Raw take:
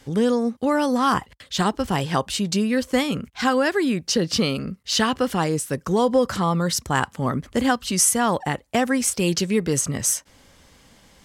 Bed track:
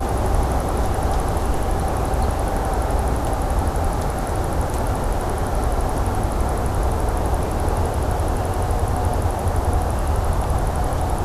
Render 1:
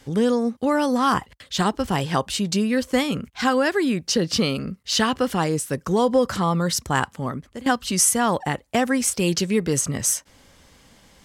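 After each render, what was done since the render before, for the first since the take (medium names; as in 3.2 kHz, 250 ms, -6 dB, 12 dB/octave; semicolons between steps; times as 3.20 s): 6.98–7.66 s: fade out, to -18 dB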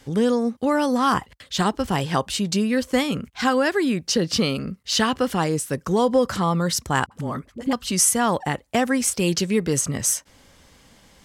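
7.06–7.73 s: phase dispersion highs, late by 53 ms, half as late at 490 Hz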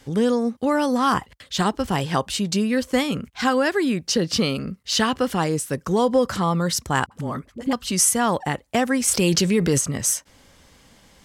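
9.08–9.78 s: level flattener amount 70%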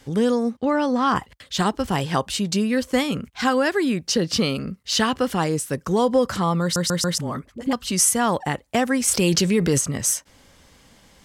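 0.57–1.16 s: distance through air 97 m; 6.62 s: stutter in place 0.14 s, 4 plays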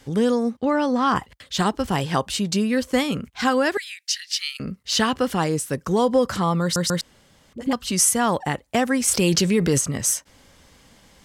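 3.77–4.60 s: elliptic high-pass 1.8 kHz, stop band 70 dB; 7.01–7.53 s: room tone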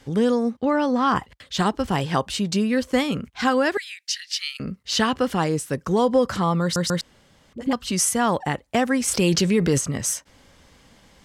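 treble shelf 7.2 kHz -6.5 dB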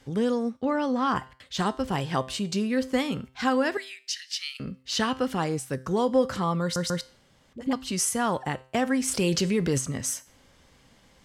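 feedback comb 130 Hz, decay 0.44 s, harmonics all, mix 50%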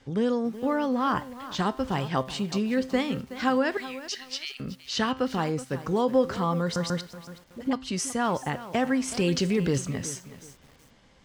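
distance through air 58 m; bit-crushed delay 373 ms, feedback 35%, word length 7-bit, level -14 dB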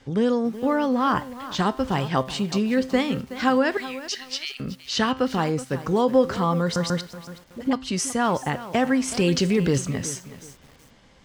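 trim +4 dB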